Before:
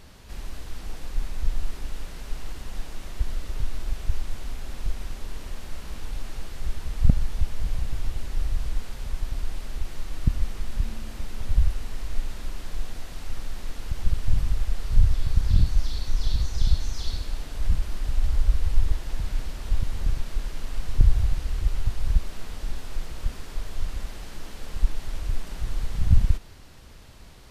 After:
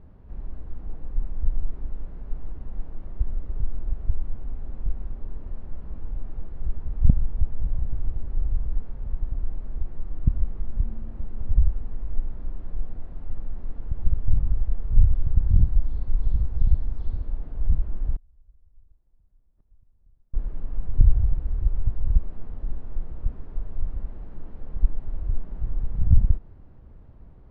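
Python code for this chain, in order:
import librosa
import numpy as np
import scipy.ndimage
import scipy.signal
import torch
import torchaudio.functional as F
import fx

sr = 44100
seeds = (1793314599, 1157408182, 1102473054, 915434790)

y = scipy.signal.sosfilt(scipy.signal.butter(2, 1100.0, 'lowpass', fs=sr, output='sos'), x)
y = fx.low_shelf(y, sr, hz=430.0, db=10.0)
y = fx.gate_flip(y, sr, shuts_db=-17.0, range_db=-36, at=(18.16, 20.34))
y = F.gain(torch.from_numpy(y), -8.5).numpy()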